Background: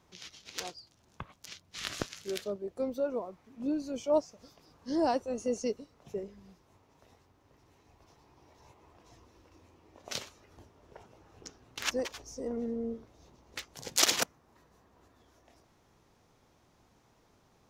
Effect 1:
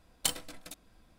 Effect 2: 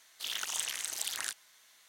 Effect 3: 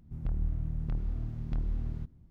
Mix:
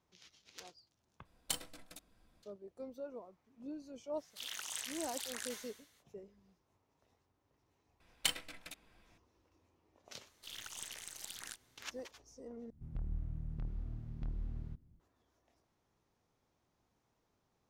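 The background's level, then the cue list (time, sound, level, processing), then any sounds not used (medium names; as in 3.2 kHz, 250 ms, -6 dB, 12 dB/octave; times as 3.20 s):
background -13.5 dB
1.25 s: replace with 1 -7.5 dB
4.16 s: add 2 -8.5 dB, fades 0.05 s + decay stretcher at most 61 dB/s
8.00 s: add 1 -7.5 dB + peaking EQ 2.3 kHz +11 dB 1.4 oct
10.23 s: add 2 -10.5 dB + partial rectifier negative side -3 dB
12.70 s: replace with 3 -8.5 dB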